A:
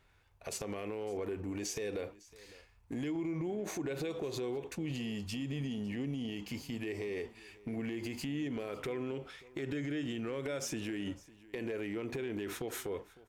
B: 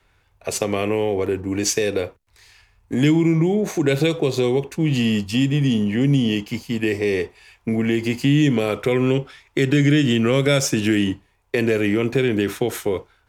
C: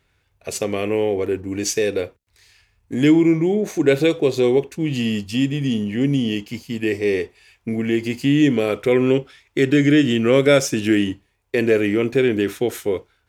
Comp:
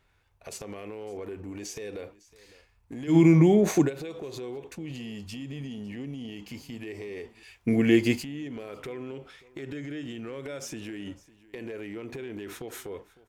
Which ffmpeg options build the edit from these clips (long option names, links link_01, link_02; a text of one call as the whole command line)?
ffmpeg -i take0.wav -i take1.wav -i take2.wav -filter_complex "[0:a]asplit=3[link_01][link_02][link_03];[link_01]atrim=end=3.17[link_04];[1:a]atrim=start=3.07:end=3.91[link_05];[link_02]atrim=start=3.81:end=7.432[link_06];[2:a]atrim=start=7.428:end=8.232[link_07];[link_03]atrim=start=8.228[link_08];[link_04][link_05]acrossfade=duration=0.1:curve1=tri:curve2=tri[link_09];[link_09][link_06]acrossfade=duration=0.1:curve1=tri:curve2=tri[link_10];[link_10][link_07]acrossfade=duration=0.004:curve1=hsin:curve2=hsin[link_11];[link_11][link_08]acrossfade=duration=0.004:curve1=hsin:curve2=hsin" out.wav